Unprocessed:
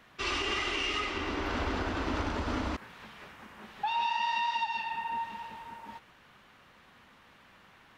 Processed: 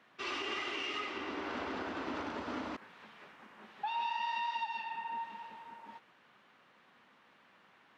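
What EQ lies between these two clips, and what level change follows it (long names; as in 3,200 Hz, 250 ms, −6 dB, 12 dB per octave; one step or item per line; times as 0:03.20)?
high-pass filter 200 Hz 12 dB per octave
high-shelf EQ 6,900 Hz −12 dB
−5.0 dB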